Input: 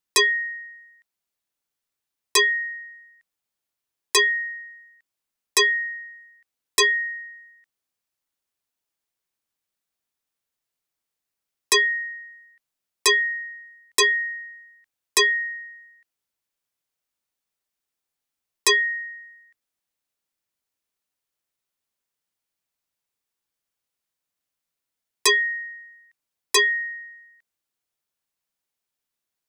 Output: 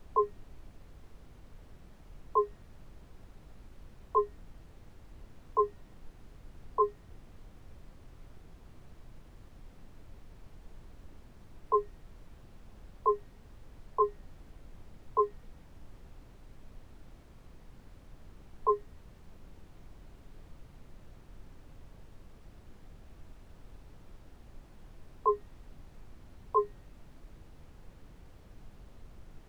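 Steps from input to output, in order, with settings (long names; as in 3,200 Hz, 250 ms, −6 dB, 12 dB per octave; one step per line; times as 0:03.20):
Chebyshev band-pass filter 420–1,100 Hz, order 5
background noise brown −49 dBFS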